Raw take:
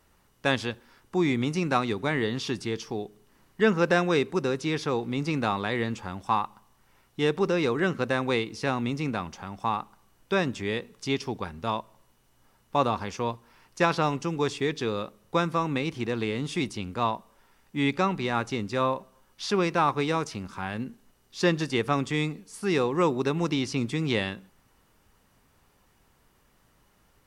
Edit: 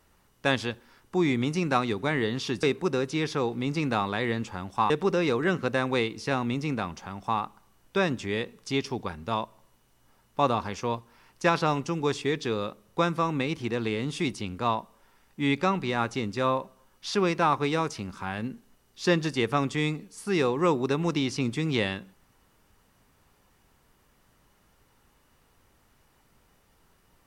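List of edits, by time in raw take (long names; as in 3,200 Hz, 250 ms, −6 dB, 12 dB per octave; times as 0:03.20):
0:02.63–0:04.14: remove
0:06.41–0:07.26: remove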